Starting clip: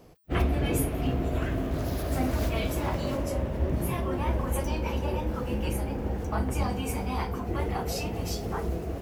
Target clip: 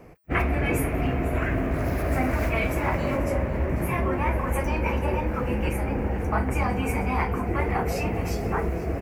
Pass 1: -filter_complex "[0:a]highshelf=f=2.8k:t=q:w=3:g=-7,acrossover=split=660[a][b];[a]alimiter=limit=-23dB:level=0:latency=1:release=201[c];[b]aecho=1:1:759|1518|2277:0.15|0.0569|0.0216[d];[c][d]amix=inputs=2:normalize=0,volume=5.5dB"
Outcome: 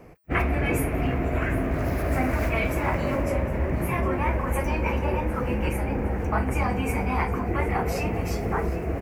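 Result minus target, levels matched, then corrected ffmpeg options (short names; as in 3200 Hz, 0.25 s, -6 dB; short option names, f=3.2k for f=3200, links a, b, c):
echo 0.267 s late
-filter_complex "[0:a]highshelf=f=2.8k:t=q:w=3:g=-7,acrossover=split=660[a][b];[a]alimiter=limit=-23dB:level=0:latency=1:release=201[c];[b]aecho=1:1:492|984|1476:0.15|0.0569|0.0216[d];[c][d]amix=inputs=2:normalize=0,volume=5.5dB"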